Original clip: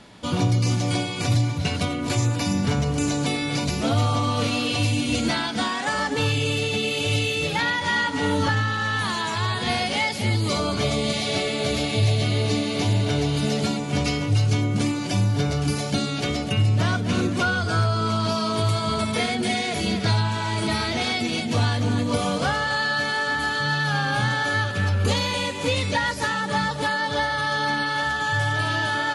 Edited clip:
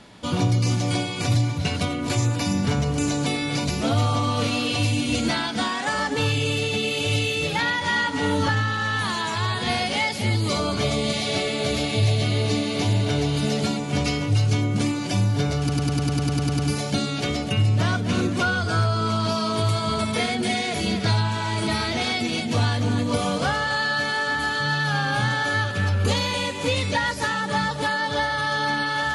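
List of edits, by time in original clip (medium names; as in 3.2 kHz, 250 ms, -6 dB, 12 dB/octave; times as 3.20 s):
15.59 s: stutter 0.10 s, 11 plays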